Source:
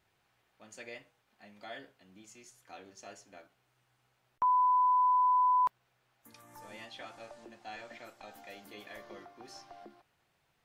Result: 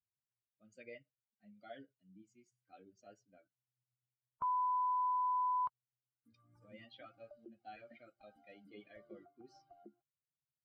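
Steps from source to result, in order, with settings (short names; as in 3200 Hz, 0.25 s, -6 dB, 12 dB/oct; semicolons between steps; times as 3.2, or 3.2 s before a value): per-bin expansion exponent 2; LPF 3500 Hz 12 dB/oct; low shelf 430 Hz +7 dB; notch comb 890 Hz; in parallel at -2 dB: compressor, threshold -40 dBFS, peak gain reduction 13 dB; on the sum: gain -8.5 dB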